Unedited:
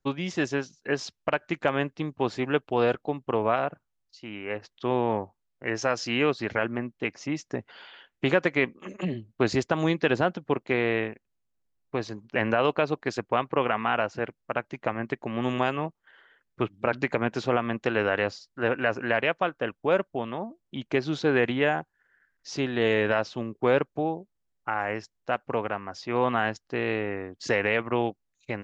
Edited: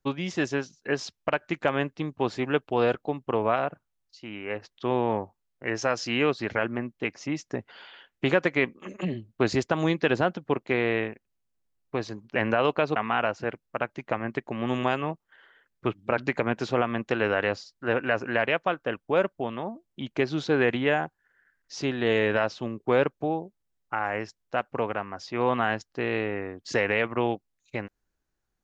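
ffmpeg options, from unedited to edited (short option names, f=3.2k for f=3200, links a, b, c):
-filter_complex "[0:a]asplit=2[a][b];[a]atrim=end=12.962[c];[b]atrim=start=13.708[d];[c][d]acrossfade=d=0.004:c1=hsin:c2=hsin"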